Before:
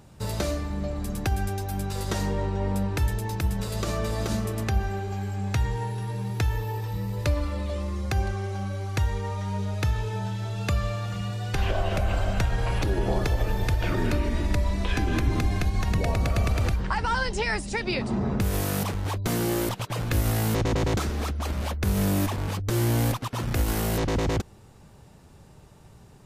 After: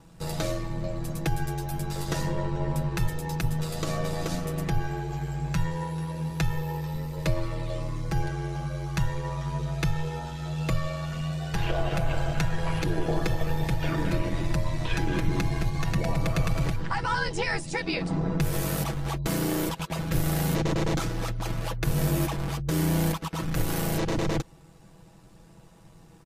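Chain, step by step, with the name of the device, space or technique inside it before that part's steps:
ring-modulated robot voice (ring modulation 43 Hz; comb filter 6.1 ms, depth 70%)

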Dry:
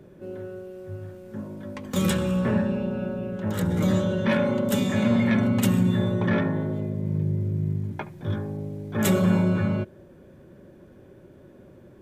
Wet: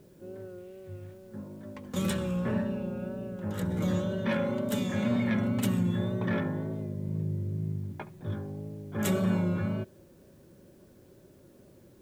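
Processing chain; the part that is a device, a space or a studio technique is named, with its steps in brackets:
0:00.58–0:01.14: flat-topped bell 2,800 Hz +9 dB 1.2 octaves
plain cassette with noise reduction switched in (one half of a high-frequency compander decoder only; tape wow and flutter; white noise bed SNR 38 dB)
level −6.5 dB

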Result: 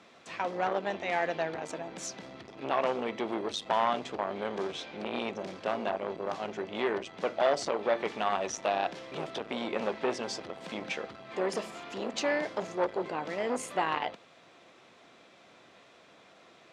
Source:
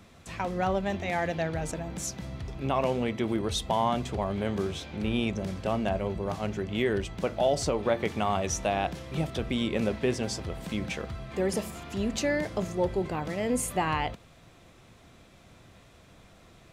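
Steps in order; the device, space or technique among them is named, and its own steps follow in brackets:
public-address speaker with an overloaded transformer (saturating transformer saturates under 840 Hz; band-pass filter 340–5,400 Hz)
level +1.5 dB

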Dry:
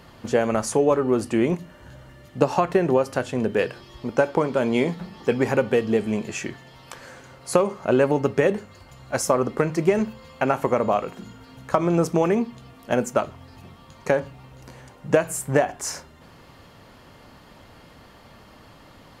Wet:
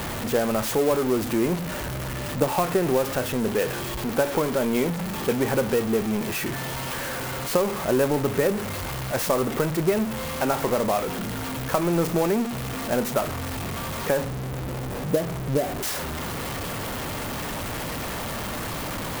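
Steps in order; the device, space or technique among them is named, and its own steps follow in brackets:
0:14.24–0:15.83: inverse Chebyshev low-pass filter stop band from 2,600 Hz, stop band 70 dB
early CD player with a faulty converter (converter with a step at zero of −20 dBFS; converter with an unsteady clock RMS 0.043 ms)
level −5 dB

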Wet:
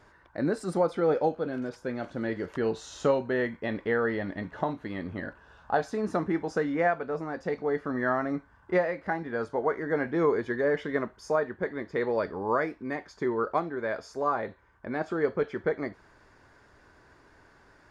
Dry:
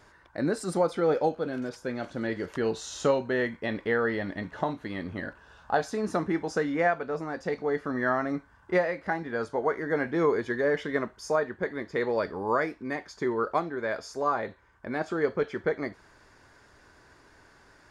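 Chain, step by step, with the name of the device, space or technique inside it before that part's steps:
behind a face mask (high-shelf EQ 3,300 Hz −8 dB)

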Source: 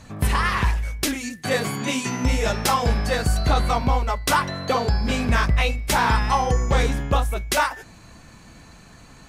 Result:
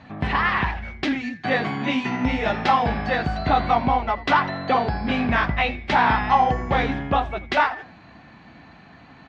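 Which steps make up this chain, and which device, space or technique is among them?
frequency-shifting delay pedal into a guitar cabinet (echo with shifted repeats 83 ms, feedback 31%, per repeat −140 Hz, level −18 dB; loudspeaker in its box 92–3,700 Hz, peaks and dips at 110 Hz −4 dB, 270 Hz +4 dB, 470 Hz −4 dB, 760 Hz +7 dB, 1,900 Hz +4 dB)

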